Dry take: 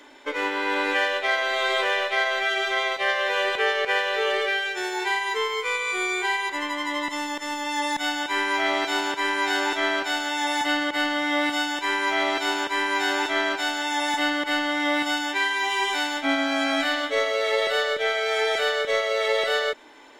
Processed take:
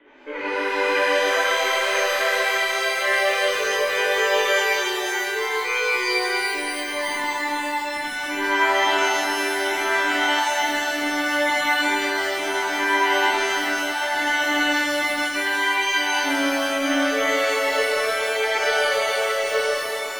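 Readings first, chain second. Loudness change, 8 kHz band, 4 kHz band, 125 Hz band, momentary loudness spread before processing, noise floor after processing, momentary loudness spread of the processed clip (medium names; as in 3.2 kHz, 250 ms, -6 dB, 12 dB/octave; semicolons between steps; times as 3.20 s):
+3.0 dB, +6.5 dB, +1.5 dB, no reading, 3 LU, -28 dBFS, 5 LU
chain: rotary cabinet horn 8 Hz, later 0.7 Hz, at 2.06 s; steep low-pass 2.9 kHz 36 dB/octave; pitch-shifted reverb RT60 2.9 s, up +12 st, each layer -8 dB, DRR -9 dB; trim -3.5 dB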